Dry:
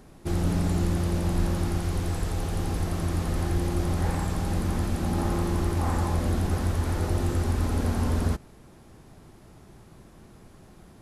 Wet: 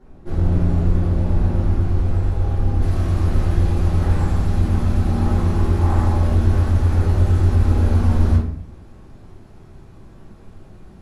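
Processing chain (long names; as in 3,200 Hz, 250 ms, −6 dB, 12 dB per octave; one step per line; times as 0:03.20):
low-pass filter 1,200 Hz 6 dB per octave, from 0:02.81 4,000 Hz
rectangular room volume 89 cubic metres, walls mixed, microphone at 2.3 metres
level −6 dB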